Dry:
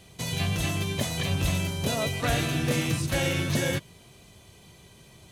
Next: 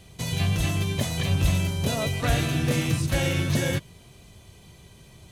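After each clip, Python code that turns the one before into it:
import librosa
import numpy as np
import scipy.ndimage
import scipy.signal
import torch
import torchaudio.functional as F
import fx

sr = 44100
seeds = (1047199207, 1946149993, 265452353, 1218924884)

y = fx.low_shelf(x, sr, hz=110.0, db=8.5)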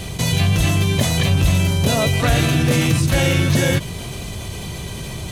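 y = fx.env_flatten(x, sr, amount_pct=50)
y = y * 10.0 ** (5.0 / 20.0)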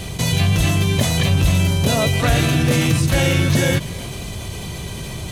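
y = x + 10.0 ** (-22.0 / 20.0) * np.pad(x, (int(292 * sr / 1000.0), 0))[:len(x)]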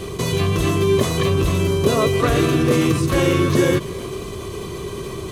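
y = fx.small_body(x, sr, hz=(390.0, 1100.0), ring_ms=30, db=17)
y = y * 10.0 ** (-5.0 / 20.0)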